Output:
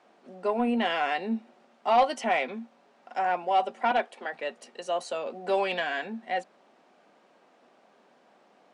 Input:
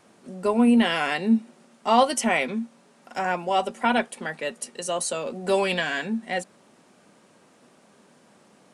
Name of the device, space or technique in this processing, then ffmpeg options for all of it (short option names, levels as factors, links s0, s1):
intercom: -filter_complex "[0:a]asettb=1/sr,asplit=3[s0][s1][s2];[s0]atrim=end=3.914[s3];[s1]atrim=start=3.91:end=4.33,asetpts=PTS-STARTPTS,afade=t=in:d=0.004:c=qsin,afade=t=out:st=0.416:d=0.004:c=qsin,highpass=f=250:w=0.5412,highpass=f=250:w=1.3066[s4];[s2]atrim=start=4.326[s5];[s3][s4]acrossfade=d=0.004:c1=hsin:c2=qsin[s6];[s6][s5]acrossfade=d=0.004:c1=qsin:c2=hsin,highpass=300,lowpass=4000,equalizer=f=730:t=o:w=0.39:g=6.5,asoftclip=type=tanh:threshold=0.335,volume=0.631"